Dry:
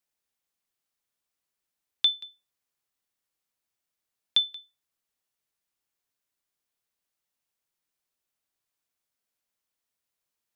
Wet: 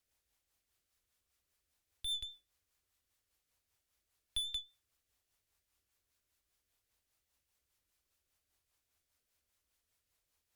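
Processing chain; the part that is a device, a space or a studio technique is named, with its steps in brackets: 2.22–4.48 de-hum 60.83 Hz, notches 6; overdriven rotary cabinet (tube stage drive 39 dB, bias 0.25; rotary speaker horn 5 Hz); resonant low shelf 110 Hz +10.5 dB, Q 1.5; gain +6.5 dB

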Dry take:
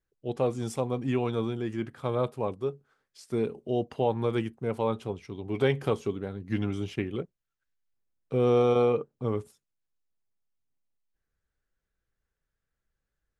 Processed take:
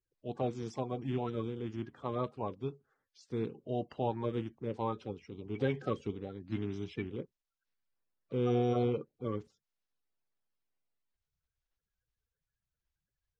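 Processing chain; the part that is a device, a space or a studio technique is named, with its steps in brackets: clip after many re-uploads (LPF 6200 Hz 24 dB/oct; bin magnitudes rounded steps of 30 dB); gain -6.5 dB

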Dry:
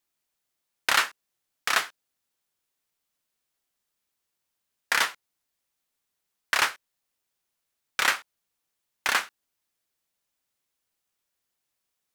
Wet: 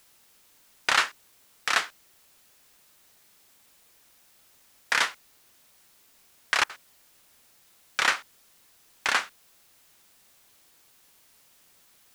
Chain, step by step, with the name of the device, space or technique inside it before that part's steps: worn cassette (LPF 8400 Hz; wow and flutter; level dips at 6.64, 53 ms -29 dB; white noise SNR 26 dB)

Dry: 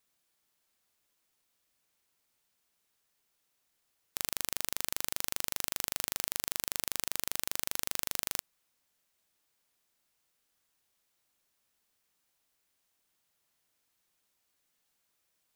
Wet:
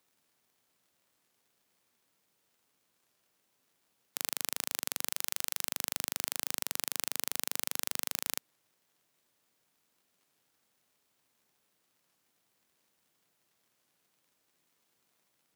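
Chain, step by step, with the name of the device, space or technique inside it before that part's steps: 5.11–5.65 HPF 840 Hz 6 dB/oct; warped LP (record warp 33 1/3 rpm, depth 160 cents; crackle; pink noise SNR 38 dB); HPF 160 Hz 12 dB/oct

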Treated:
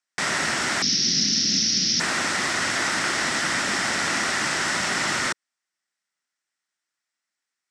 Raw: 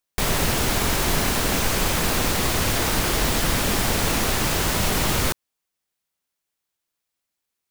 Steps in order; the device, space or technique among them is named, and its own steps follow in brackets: 0.82–2 EQ curve 120 Hz 0 dB, 210 Hz +8 dB, 970 Hz -30 dB, 5700 Hz +14 dB, 8100 Hz -30 dB, 13000 Hz -11 dB; full-range speaker at full volume (Doppler distortion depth 0.11 ms; speaker cabinet 220–8500 Hz, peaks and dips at 460 Hz -8 dB, 1400 Hz +7 dB, 1900 Hz +10 dB, 5400 Hz +6 dB, 8000 Hz +5 dB); gain -3 dB

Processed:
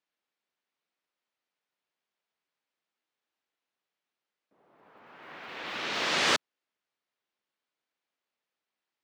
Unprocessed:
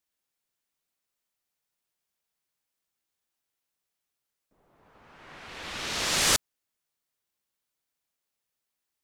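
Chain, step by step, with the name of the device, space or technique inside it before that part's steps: early digital voice recorder (BPF 220–3500 Hz; block floating point 7-bit); gain +2 dB

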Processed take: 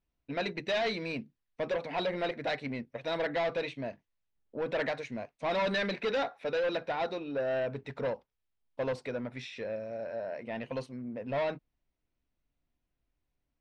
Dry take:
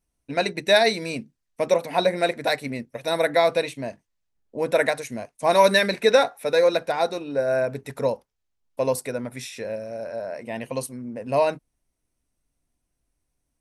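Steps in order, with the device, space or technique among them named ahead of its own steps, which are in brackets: overdriven synthesiser ladder filter (soft clip -22 dBFS, distortion -7 dB; ladder low-pass 4700 Hz, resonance 20%)

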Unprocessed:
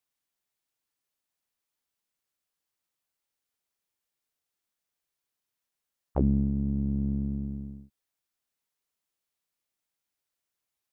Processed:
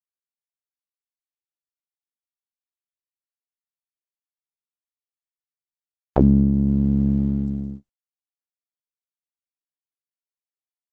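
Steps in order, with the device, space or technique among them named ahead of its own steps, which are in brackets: video call (HPF 110 Hz 6 dB/oct; AGC gain up to 5.5 dB; gate -37 dBFS, range -53 dB; gain +6 dB; Opus 12 kbps 48000 Hz)

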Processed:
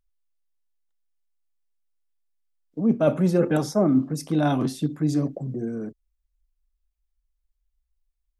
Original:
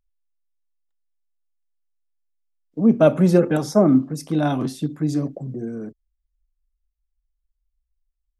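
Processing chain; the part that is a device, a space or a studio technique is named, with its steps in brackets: compression on the reversed sound (reverse; compressor, threshold -16 dBFS, peak gain reduction 7 dB; reverse)

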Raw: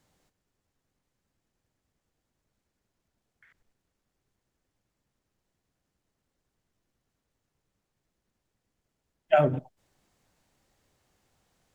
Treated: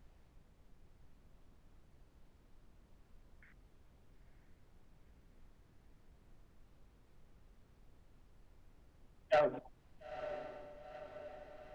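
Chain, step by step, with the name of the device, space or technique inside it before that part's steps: aircraft cabin announcement (BPF 450–3100 Hz; soft clip -20.5 dBFS, distortion -11 dB; brown noise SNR 14 dB); diffused feedback echo 0.93 s, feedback 58%, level -11.5 dB; gain -3.5 dB

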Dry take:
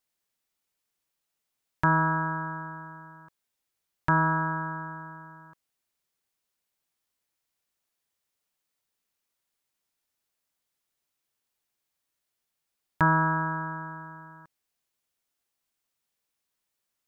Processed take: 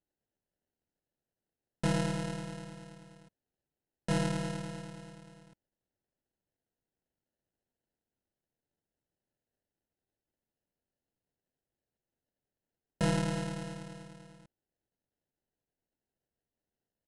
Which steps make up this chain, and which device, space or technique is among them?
crushed at another speed (playback speed 2×; sample-and-hold 19×; playback speed 0.5×); gain -7 dB

